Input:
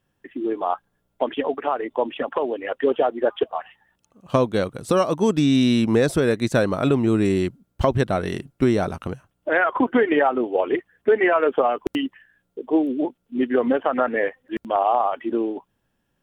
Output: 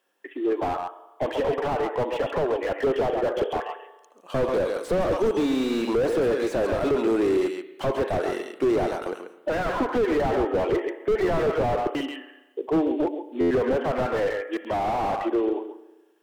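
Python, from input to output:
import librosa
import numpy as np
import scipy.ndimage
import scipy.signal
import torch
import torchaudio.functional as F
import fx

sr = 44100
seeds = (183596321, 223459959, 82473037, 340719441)

p1 = scipy.signal.sosfilt(scipy.signal.butter(4, 350.0, 'highpass', fs=sr, output='sos'), x)
p2 = p1 + fx.echo_single(p1, sr, ms=136, db=-10.5, dry=0)
p3 = fx.rev_spring(p2, sr, rt60_s=1.1, pass_ms=(34, 58), chirp_ms=45, drr_db=14.0)
p4 = np.clip(p3, -10.0 ** (-21.0 / 20.0), 10.0 ** (-21.0 / 20.0))
p5 = p3 + (p4 * 10.0 ** (-6.5 / 20.0))
p6 = fx.buffer_glitch(p5, sr, at_s=(13.4,), block=512, repeats=8)
y = fx.slew_limit(p6, sr, full_power_hz=49.0)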